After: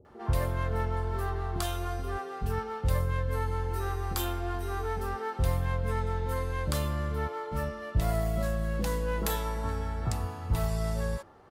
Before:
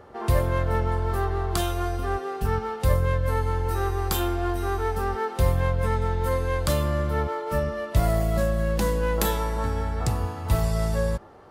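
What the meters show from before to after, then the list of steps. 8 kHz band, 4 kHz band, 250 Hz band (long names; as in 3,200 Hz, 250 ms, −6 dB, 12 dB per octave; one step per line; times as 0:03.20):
−5.5 dB, −5.5 dB, −6.5 dB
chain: multiband delay without the direct sound lows, highs 50 ms, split 500 Hz
level −5.5 dB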